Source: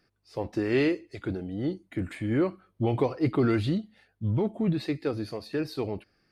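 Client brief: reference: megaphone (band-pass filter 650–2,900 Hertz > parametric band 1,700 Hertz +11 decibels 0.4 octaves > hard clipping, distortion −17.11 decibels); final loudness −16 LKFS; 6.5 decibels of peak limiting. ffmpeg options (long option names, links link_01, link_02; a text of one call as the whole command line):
ffmpeg -i in.wav -af "alimiter=limit=-19.5dB:level=0:latency=1,highpass=650,lowpass=2900,equalizer=frequency=1700:width_type=o:width=0.4:gain=11,asoftclip=type=hard:threshold=-28dB,volume=22.5dB" out.wav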